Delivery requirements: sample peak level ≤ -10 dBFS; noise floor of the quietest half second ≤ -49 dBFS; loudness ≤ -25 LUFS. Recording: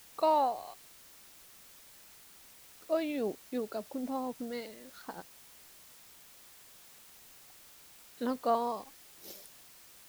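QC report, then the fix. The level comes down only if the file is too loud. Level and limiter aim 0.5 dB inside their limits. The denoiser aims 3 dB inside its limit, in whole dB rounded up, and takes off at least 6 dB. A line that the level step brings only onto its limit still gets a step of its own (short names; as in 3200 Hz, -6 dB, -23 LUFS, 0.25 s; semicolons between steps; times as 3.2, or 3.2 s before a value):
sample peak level -17.5 dBFS: OK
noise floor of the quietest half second -56 dBFS: OK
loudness -34.5 LUFS: OK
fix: none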